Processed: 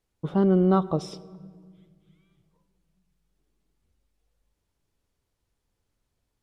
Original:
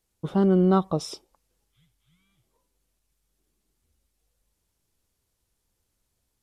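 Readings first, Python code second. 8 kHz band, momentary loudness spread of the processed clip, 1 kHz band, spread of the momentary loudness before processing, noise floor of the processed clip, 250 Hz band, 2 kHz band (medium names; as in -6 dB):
-7.5 dB, 11 LU, -0.5 dB, 11 LU, -80 dBFS, -0.5 dB, -1.0 dB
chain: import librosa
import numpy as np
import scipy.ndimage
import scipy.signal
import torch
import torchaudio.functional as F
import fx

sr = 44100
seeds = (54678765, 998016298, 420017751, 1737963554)

y = fx.high_shelf(x, sr, hz=5300.0, db=-12.0)
y = fx.room_shoebox(y, sr, seeds[0], volume_m3=3000.0, walls='mixed', distance_m=0.31)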